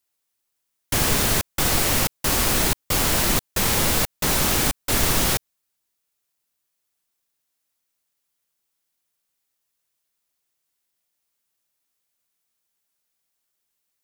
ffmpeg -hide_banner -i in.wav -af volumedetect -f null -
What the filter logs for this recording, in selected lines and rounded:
mean_volume: -26.1 dB
max_volume: -6.6 dB